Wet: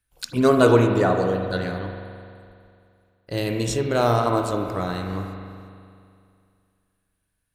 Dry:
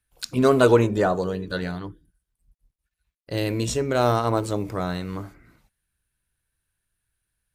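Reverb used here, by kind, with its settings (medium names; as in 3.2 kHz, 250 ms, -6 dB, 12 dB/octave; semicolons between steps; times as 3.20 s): spring tank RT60 2.4 s, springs 42 ms, chirp 35 ms, DRR 4 dB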